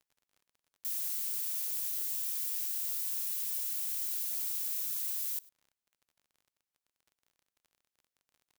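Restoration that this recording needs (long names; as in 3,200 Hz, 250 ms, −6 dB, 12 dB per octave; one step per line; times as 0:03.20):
click removal
echo removal 103 ms −23 dB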